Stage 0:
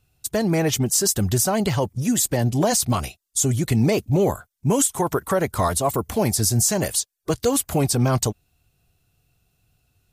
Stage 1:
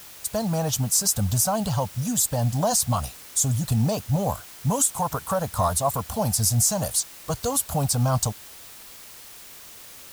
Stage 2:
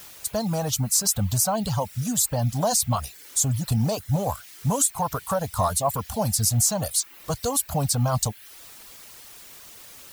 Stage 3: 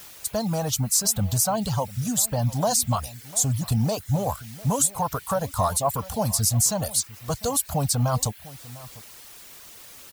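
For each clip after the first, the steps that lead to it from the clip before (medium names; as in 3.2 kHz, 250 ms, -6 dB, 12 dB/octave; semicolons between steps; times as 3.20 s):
static phaser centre 870 Hz, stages 4; added noise white -44 dBFS
reverb removal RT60 0.51 s; dynamic bell 4.2 kHz, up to +4 dB, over -51 dBFS, Q 7.6
echo from a far wall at 120 m, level -19 dB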